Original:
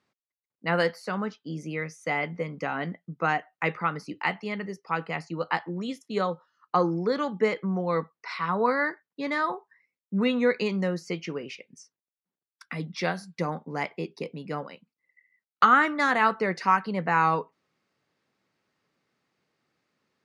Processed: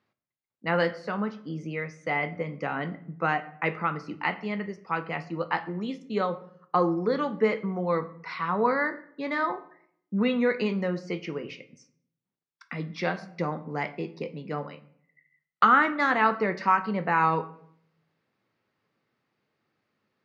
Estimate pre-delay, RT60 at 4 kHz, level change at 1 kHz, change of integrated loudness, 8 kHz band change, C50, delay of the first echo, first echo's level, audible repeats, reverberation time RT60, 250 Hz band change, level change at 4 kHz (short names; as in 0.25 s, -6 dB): 8 ms, 0.45 s, -0.5 dB, -0.5 dB, n/a, 15.5 dB, none, none, none, 0.65 s, 0.0 dB, -2.5 dB